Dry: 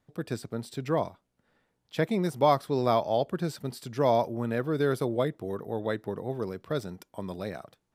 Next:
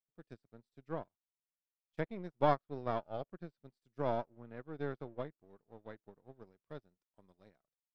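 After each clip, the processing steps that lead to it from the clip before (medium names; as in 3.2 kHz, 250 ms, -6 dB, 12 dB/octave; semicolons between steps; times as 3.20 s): partial rectifier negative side -7 dB; low-pass that closes with the level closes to 2.9 kHz, closed at -26 dBFS; upward expansion 2.5:1, over -45 dBFS; trim -4 dB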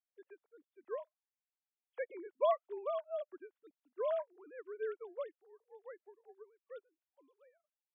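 formants replaced by sine waves; trim -1 dB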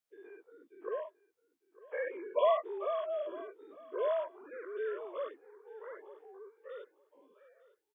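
every event in the spectrogram widened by 120 ms; feedback delay 902 ms, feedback 18%, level -19.5 dB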